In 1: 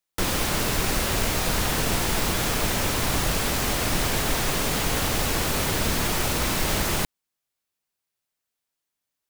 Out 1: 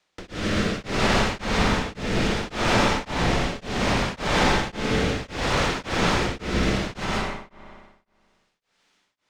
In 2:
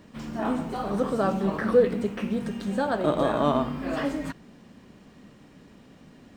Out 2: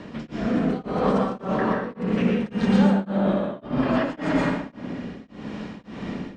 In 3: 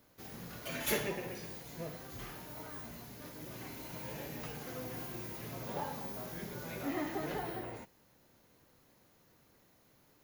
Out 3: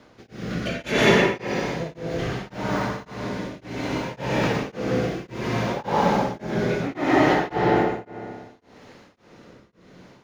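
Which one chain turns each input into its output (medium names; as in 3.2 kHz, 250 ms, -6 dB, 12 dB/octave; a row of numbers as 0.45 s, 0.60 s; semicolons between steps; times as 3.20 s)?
bass shelf 140 Hz -8.5 dB; compressor with a negative ratio -34 dBFS, ratio -1; peak limiter -26 dBFS; rotary cabinet horn 0.65 Hz; distance through air 130 m; on a send: feedback echo behind a low-pass 61 ms, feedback 77%, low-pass 2.2 kHz, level -6.5 dB; on the sum: plate-style reverb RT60 0.99 s, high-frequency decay 0.8×, pre-delay 105 ms, DRR -1 dB; tremolo of two beating tones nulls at 1.8 Hz; normalise loudness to -24 LUFS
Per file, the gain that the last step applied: +15.0 dB, +12.5 dB, +20.5 dB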